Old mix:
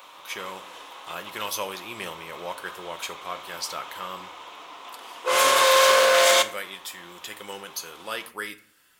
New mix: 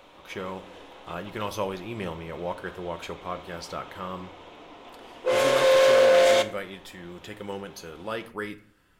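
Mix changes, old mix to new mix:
background: add bell 1100 Hz -10 dB 0.7 oct; master: add tilt -4 dB/oct

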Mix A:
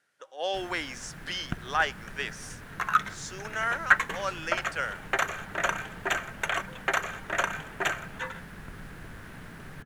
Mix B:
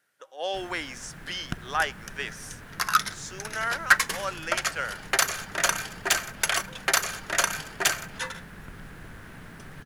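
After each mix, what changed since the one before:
speech: remove LPF 9200 Hz; second sound: remove running mean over 9 samples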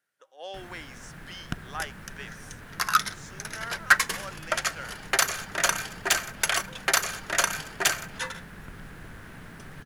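speech -9.0 dB

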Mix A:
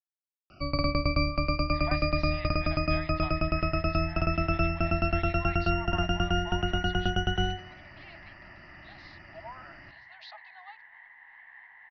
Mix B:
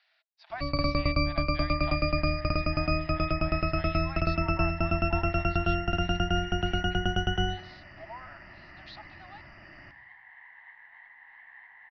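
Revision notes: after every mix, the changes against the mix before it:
speech: entry -1.35 s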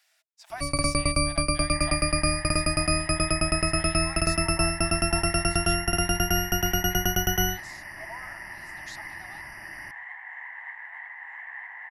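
first sound: send -11.0 dB; second sound: add band shelf 1200 Hz +11.5 dB 2.6 oct; master: remove elliptic low-pass 4400 Hz, stop band 50 dB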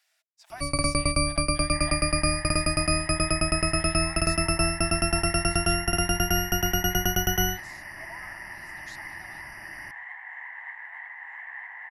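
speech -4.0 dB

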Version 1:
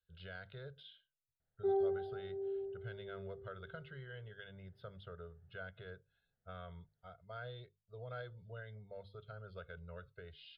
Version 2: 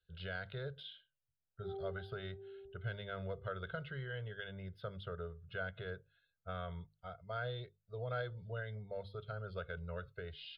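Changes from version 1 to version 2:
speech +6.5 dB; background -12.0 dB

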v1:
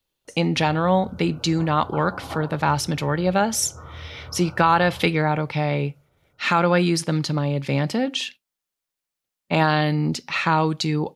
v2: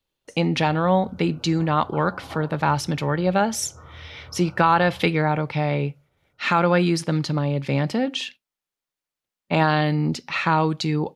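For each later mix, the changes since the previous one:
speech: add high shelf 5200 Hz -6.5 dB; background -4.5 dB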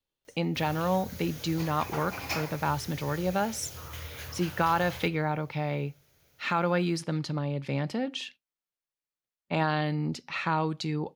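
speech -8.0 dB; background: remove Chebyshev low-pass 1500 Hz, order 10

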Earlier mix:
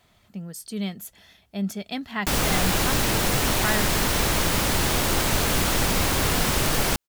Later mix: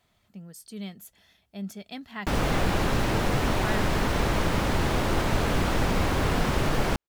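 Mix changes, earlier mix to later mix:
speech -8.0 dB; background: add LPF 1500 Hz 6 dB/oct

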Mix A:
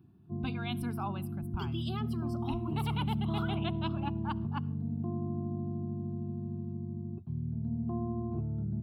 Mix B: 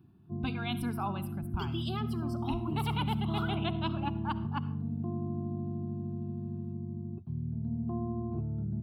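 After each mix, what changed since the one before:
speech: send +11.0 dB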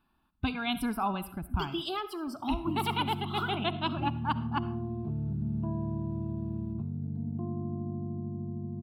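speech +5.0 dB; background: entry +2.35 s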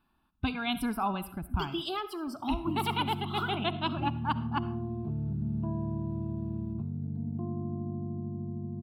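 none

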